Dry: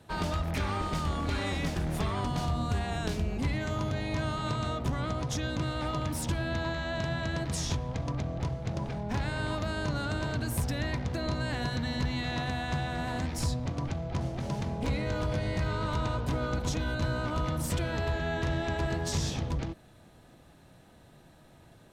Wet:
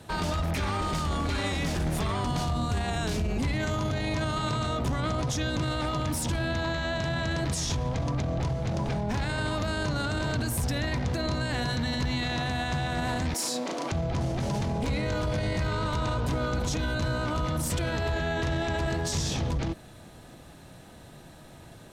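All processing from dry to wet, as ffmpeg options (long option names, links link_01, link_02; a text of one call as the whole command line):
ffmpeg -i in.wav -filter_complex "[0:a]asettb=1/sr,asplit=3[link_01][link_02][link_03];[link_01]atrim=end=13.344[link_04];[link_02]atrim=start=13.34:end=13.92,asetpts=PTS-STARTPTS,afade=type=in:duration=0.004:curve=qsin,afade=type=out:start_time=0.576:duration=0.004:curve=qsin,highpass=frequency=290:width=0.5412,highpass=frequency=290:width=1.3066,highshelf=frequency=9600:gain=6.5,asplit=2[link_05][link_06];[link_06]adelay=36,volume=-2.5dB[link_07];[link_05][link_07]amix=inputs=2:normalize=0,atrim=end_sample=25578[link_08];[link_03]atrim=start=13.916[link_09];[link_04][link_08]acrossfade=duration=0.004:curve1=hsin:curve2=qsin[link_10];[link_10][link_09]acrossfade=duration=0.004:curve1=qsin:curve2=hsin,equalizer=frequency=7900:width_type=o:width=1.9:gain=3.5,alimiter=level_in=5dB:limit=-24dB:level=0:latency=1:release=18,volume=-5dB,volume=7.5dB" out.wav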